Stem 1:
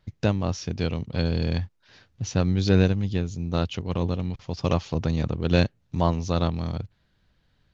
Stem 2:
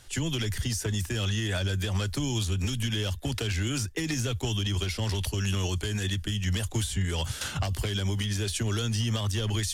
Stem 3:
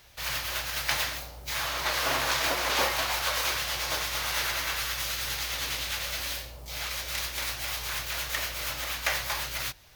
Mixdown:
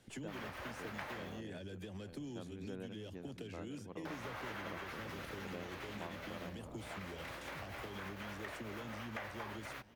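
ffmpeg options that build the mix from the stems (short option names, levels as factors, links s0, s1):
-filter_complex "[0:a]volume=0.282,asplit=2[s0][s1];[s1]volume=0.282[s2];[1:a]equalizer=f=1200:w=0.71:g=-15,volume=1.12,asplit=2[s3][s4];[s4]volume=0.0668[s5];[2:a]lowshelf=f=460:g=11,adelay=100,volume=0.944,asplit=3[s6][s7][s8];[s6]atrim=end=1.41,asetpts=PTS-STARTPTS,afade=t=out:st=1.406:d=0.004:c=hsin[s9];[s7]atrim=start=1.41:end=4.05,asetpts=PTS-STARTPTS,volume=0[s10];[s8]atrim=start=4.05,asetpts=PTS-STARTPTS,afade=t=in:d=0.004:c=hsin[s11];[s9][s10][s11]concat=n=3:v=0:a=1[s12];[s2][s5]amix=inputs=2:normalize=0,aecho=0:1:896|1792|2688|3584|4480:1|0.34|0.116|0.0393|0.0134[s13];[s0][s3][s12][s13]amix=inputs=4:normalize=0,acrossover=split=190 2300:gain=0.1 1 0.126[s14][s15][s16];[s14][s15][s16]amix=inputs=3:normalize=0,acompressor=threshold=0.00398:ratio=2.5"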